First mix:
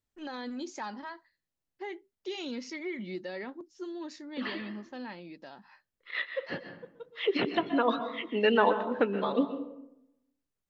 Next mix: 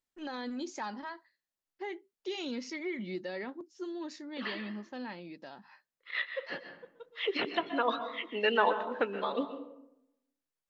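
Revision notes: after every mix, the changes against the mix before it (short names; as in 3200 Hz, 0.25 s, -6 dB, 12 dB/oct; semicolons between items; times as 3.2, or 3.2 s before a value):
second voice: add HPF 620 Hz 6 dB/oct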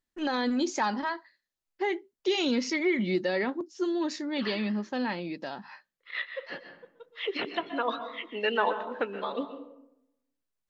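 first voice +10.5 dB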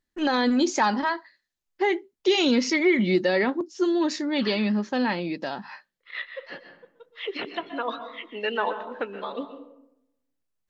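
first voice +6.0 dB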